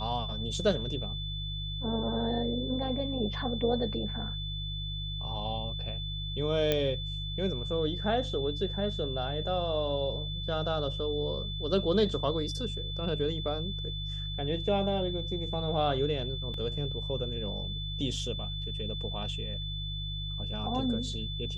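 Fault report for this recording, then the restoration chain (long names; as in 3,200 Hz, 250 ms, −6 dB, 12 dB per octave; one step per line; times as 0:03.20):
mains hum 50 Hz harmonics 3 −37 dBFS
whistle 3,500 Hz −38 dBFS
0:06.72: click −13 dBFS
0:16.54: drop-out 2 ms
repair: click removal
notch filter 3,500 Hz, Q 30
hum removal 50 Hz, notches 3
repair the gap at 0:16.54, 2 ms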